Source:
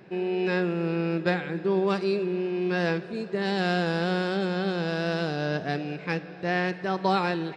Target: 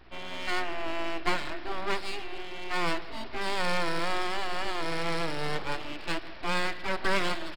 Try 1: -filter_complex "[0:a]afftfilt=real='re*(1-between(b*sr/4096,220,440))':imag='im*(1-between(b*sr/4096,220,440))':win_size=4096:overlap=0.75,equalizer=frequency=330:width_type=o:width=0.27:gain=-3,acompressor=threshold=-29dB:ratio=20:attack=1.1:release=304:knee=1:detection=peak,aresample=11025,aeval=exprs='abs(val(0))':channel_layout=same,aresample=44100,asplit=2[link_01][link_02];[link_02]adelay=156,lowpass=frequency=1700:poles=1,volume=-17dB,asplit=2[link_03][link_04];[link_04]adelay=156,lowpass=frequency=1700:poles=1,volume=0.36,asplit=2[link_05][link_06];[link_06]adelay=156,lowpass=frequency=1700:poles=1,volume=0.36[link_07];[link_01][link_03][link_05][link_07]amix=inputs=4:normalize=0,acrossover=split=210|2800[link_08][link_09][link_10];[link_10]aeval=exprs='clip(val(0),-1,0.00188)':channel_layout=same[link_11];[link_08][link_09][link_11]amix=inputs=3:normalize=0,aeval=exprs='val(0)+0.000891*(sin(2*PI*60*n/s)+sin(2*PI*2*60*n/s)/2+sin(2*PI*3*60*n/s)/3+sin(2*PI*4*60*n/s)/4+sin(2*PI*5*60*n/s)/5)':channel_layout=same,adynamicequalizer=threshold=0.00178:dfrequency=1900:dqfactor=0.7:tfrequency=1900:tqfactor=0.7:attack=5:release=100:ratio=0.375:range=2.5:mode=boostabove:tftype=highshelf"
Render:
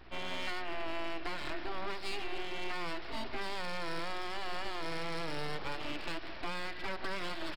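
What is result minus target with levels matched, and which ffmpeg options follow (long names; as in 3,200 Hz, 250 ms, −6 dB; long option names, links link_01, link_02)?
downward compressor: peak gain reduction +14 dB
-filter_complex "[0:a]afftfilt=real='re*(1-between(b*sr/4096,220,440))':imag='im*(1-between(b*sr/4096,220,440))':win_size=4096:overlap=0.75,equalizer=frequency=330:width_type=o:width=0.27:gain=-3,aresample=11025,aeval=exprs='abs(val(0))':channel_layout=same,aresample=44100,asplit=2[link_01][link_02];[link_02]adelay=156,lowpass=frequency=1700:poles=1,volume=-17dB,asplit=2[link_03][link_04];[link_04]adelay=156,lowpass=frequency=1700:poles=1,volume=0.36,asplit=2[link_05][link_06];[link_06]adelay=156,lowpass=frequency=1700:poles=1,volume=0.36[link_07];[link_01][link_03][link_05][link_07]amix=inputs=4:normalize=0,acrossover=split=210|2800[link_08][link_09][link_10];[link_10]aeval=exprs='clip(val(0),-1,0.00188)':channel_layout=same[link_11];[link_08][link_09][link_11]amix=inputs=3:normalize=0,aeval=exprs='val(0)+0.000891*(sin(2*PI*60*n/s)+sin(2*PI*2*60*n/s)/2+sin(2*PI*3*60*n/s)/3+sin(2*PI*4*60*n/s)/4+sin(2*PI*5*60*n/s)/5)':channel_layout=same,adynamicequalizer=threshold=0.00178:dfrequency=1900:dqfactor=0.7:tfrequency=1900:tqfactor=0.7:attack=5:release=100:ratio=0.375:range=2.5:mode=boostabove:tftype=highshelf"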